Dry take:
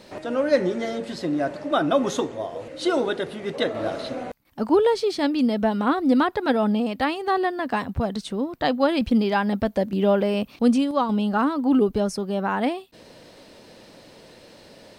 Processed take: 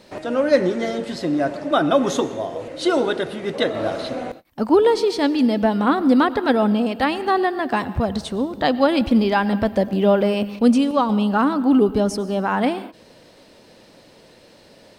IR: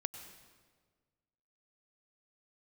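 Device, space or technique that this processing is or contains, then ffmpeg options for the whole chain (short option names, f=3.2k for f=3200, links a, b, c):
keyed gated reverb: -filter_complex "[0:a]asplit=3[a][b][c];[1:a]atrim=start_sample=2205[d];[b][d]afir=irnorm=-1:irlink=0[e];[c]apad=whole_len=660930[f];[e][f]sidechaingate=range=-33dB:threshold=-43dB:ratio=16:detection=peak,volume=-1dB[g];[a][g]amix=inputs=2:normalize=0,volume=-1.5dB"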